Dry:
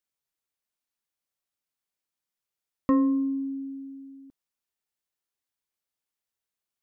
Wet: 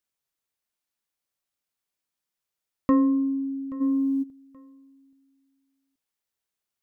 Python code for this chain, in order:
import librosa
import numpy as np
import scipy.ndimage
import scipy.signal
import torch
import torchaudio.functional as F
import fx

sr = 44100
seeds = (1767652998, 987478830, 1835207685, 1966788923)

y = fx.echo_feedback(x, sr, ms=828, feedback_pct=25, wet_db=-20.0)
y = fx.env_flatten(y, sr, amount_pct=70, at=(3.8, 4.22), fade=0.02)
y = y * librosa.db_to_amplitude(2.0)